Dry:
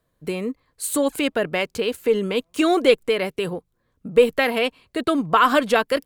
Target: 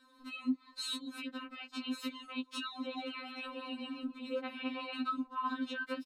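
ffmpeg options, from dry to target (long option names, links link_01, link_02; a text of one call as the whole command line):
ffmpeg -i in.wav -filter_complex "[0:a]lowpass=7700,acrossover=split=3800[link_01][link_02];[link_02]acompressor=threshold=-49dB:ratio=4:attack=1:release=60[link_03];[link_01][link_03]amix=inputs=2:normalize=0,equalizer=frequency=400:width_type=o:width=0.67:gain=-11,equalizer=frequency=1000:width_type=o:width=0.67:gain=4,equalizer=frequency=4000:width_type=o:width=0.67:gain=11,asplit=3[link_04][link_05][link_06];[link_04]afade=type=out:start_time=2.8:duration=0.02[link_07];[link_05]asplit=6[link_08][link_09][link_10][link_11][link_12][link_13];[link_09]adelay=143,afreqshift=34,volume=-12.5dB[link_14];[link_10]adelay=286,afreqshift=68,volume=-18.2dB[link_15];[link_11]adelay=429,afreqshift=102,volume=-23.9dB[link_16];[link_12]adelay=572,afreqshift=136,volume=-29.5dB[link_17];[link_13]adelay=715,afreqshift=170,volume=-35.2dB[link_18];[link_08][link_14][link_15][link_16][link_17][link_18]amix=inputs=6:normalize=0,afade=type=in:start_time=2.8:duration=0.02,afade=type=out:start_time=5.02:duration=0.02[link_19];[link_06]afade=type=in:start_time=5.02:duration=0.02[link_20];[link_07][link_19][link_20]amix=inputs=3:normalize=0,alimiter=level_in=7dB:limit=-24dB:level=0:latency=1:release=56,volume=-7dB,highpass=80,equalizer=frequency=6000:width=0.51:gain=-6,aecho=1:1:7:0.95,acompressor=threshold=-46dB:ratio=6,afftfilt=real='re*3.46*eq(mod(b,12),0)':imag='im*3.46*eq(mod(b,12),0)':win_size=2048:overlap=0.75,volume=10.5dB" out.wav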